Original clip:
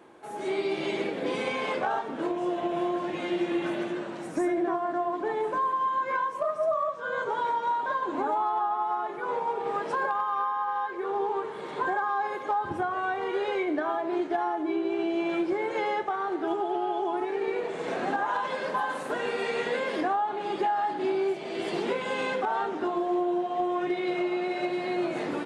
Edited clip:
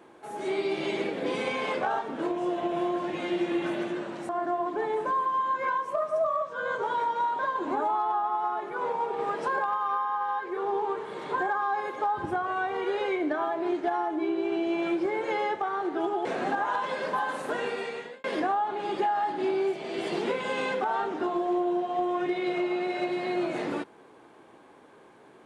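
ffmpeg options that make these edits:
-filter_complex "[0:a]asplit=4[s0][s1][s2][s3];[s0]atrim=end=4.292[s4];[s1]atrim=start=4.758:end=16.722[s5];[s2]atrim=start=17.858:end=19.85,asetpts=PTS-STARTPTS,afade=t=out:st=1.352:d=0.64[s6];[s3]atrim=start=19.85,asetpts=PTS-STARTPTS,afade=t=in:d=0.004:c=hsin[s7];[s4][s5]acrossfade=d=0.004:c1=hsin:c2=hsin[s8];[s6][s7]concat=n=2:v=0:a=1[s9];[s8][s9]acrossfade=d=0.004:c1=hsin:c2=hsin"

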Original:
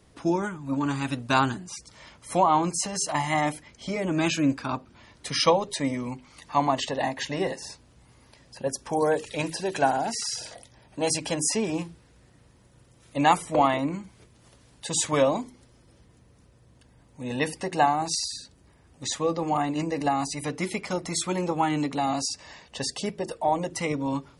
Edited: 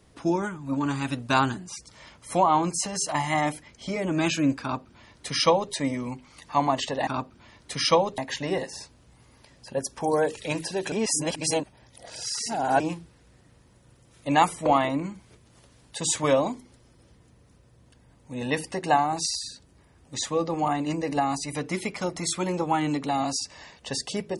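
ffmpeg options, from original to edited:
-filter_complex "[0:a]asplit=5[s0][s1][s2][s3][s4];[s0]atrim=end=7.072[s5];[s1]atrim=start=4.618:end=5.732[s6];[s2]atrim=start=7.068:end=9.812[s7];[s3]atrim=start=9.808:end=11.692,asetpts=PTS-STARTPTS,areverse[s8];[s4]atrim=start=11.688[s9];[s5][s6]acrossfade=d=0.004:c1=hsin:c2=hsin[s10];[s10][s7]acrossfade=d=0.004:c1=hsin:c2=hsin[s11];[s11][s8]acrossfade=d=0.004:c1=hsin:c2=hsin[s12];[s12][s9]acrossfade=d=0.004:c1=hsin:c2=hsin"

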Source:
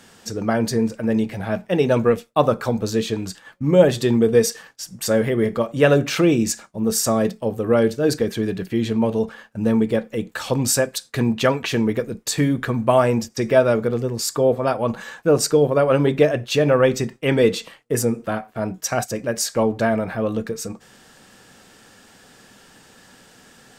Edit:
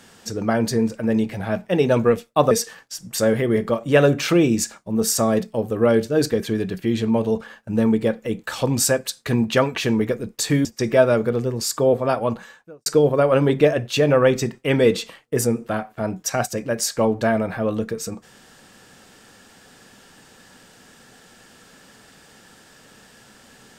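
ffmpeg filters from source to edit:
-filter_complex "[0:a]asplit=4[s0][s1][s2][s3];[s0]atrim=end=2.512[s4];[s1]atrim=start=4.388:end=12.532[s5];[s2]atrim=start=13.228:end=15.44,asetpts=PTS-STARTPTS,afade=t=out:st=1.612:d=0.6:c=qua[s6];[s3]atrim=start=15.44,asetpts=PTS-STARTPTS,afade=t=in:d=0.004:c=hsin[s7];[s4][s5]acrossfade=d=0.004:c1=hsin:c2=hsin[s8];[s6][s7]concat=n=2:v=0:a=1[s9];[s8][s9]acrossfade=d=0.004:c1=hsin:c2=hsin"

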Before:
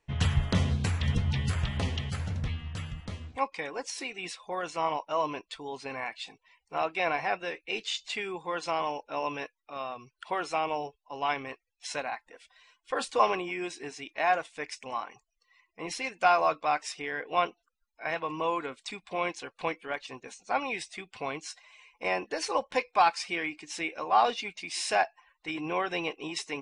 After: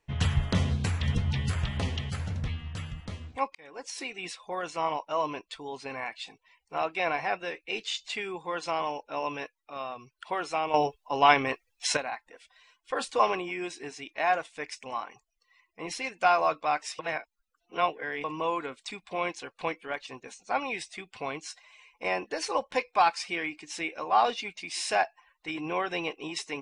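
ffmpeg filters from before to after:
-filter_complex "[0:a]asplit=6[s0][s1][s2][s3][s4][s5];[s0]atrim=end=3.55,asetpts=PTS-STARTPTS,afade=t=out:st=3.546:d=0.004:c=hsin[s6];[s1]atrim=start=3.55:end=10.742,asetpts=PTS-STARTPTS,afade=t=in:d=0.44[s7];[s2]atrim=start=10.738:end=11.972,asetpts=PTS-STARTPTS,volume=3.16[s8];[s3]atrim=start=11.968:end=16.992[s9];[s4]atrim=start=16.988:end=18.242,asetpts=PTS-STARTPTS,areverse[s10];[s5]atrim=start=18.238[s11];[s6][s7]concat=n=2:v=0:a=1[s12];[s12][s8]acrossfade=d=0.004:c1=hsin:c2=hsin[s13];[s13][s9]acrossfade=d=0.004:c1=hsin:c2=hsin[s14];[s14][s10]acrossfade=d=0.004:c1=hsin:c2=hsin[s15];[s15][s11]acrossfade=d=0.004:c1=hsin:c2=hsin"

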